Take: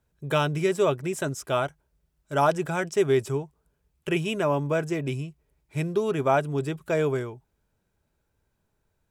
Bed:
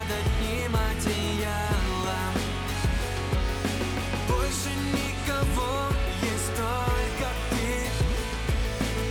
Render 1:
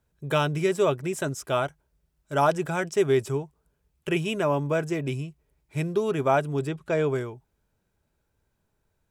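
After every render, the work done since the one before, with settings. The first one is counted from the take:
0:06.67–0:07.12: high-frequency loss of the air 53 metres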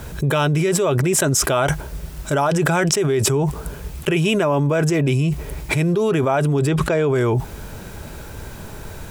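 envelope flattener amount 100%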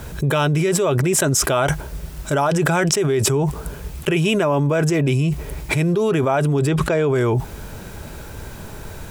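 no processing that can be heard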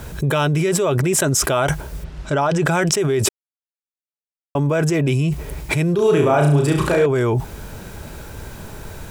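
0:02.03–0:02.66: low-pass filter 3,500 Hz → 8,000 Hz
0:03.29–0:04.55: silence
0:05.95–0:07.06: flutter between parallel walls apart 5.9 metres, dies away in 0.53 s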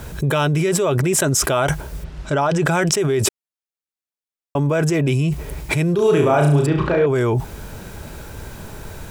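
0:06.66–0:07.07: high-frequency loss of the air 250 metres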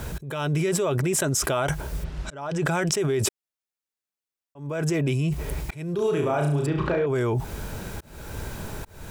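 downward compressor, threshold −21 dBFS, peak gain reduction 10 dB
volume swells 346 ms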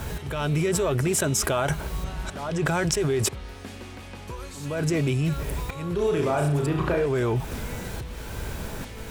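mix in bed −11.5 dB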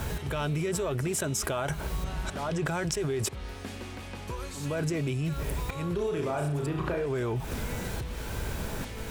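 downward compressor, threshold −27 dBFS, peak gain reduction 7.5 dB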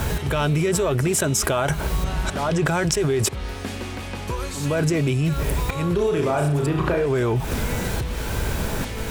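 level +9 dB

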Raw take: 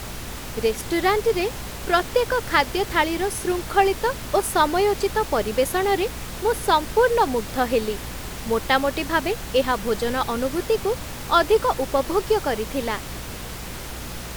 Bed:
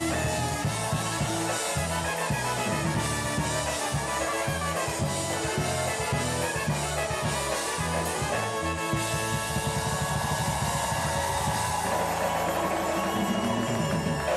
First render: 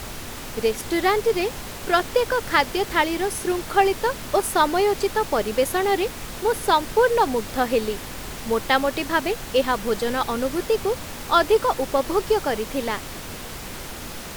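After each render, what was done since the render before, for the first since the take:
hum removal 60 Hz, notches 3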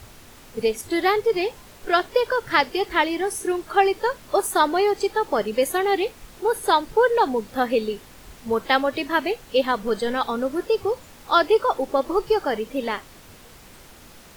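noise reduction from a noise print 12 dB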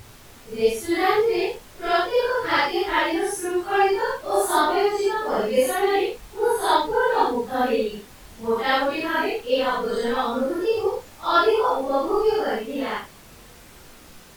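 random phases in long frames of 200 ms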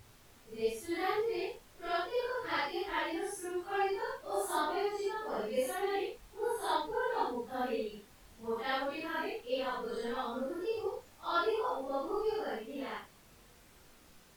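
level −13.5 dB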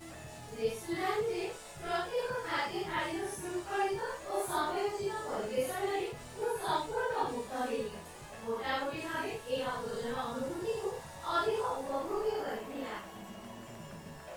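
mix in bed −20.5 dB

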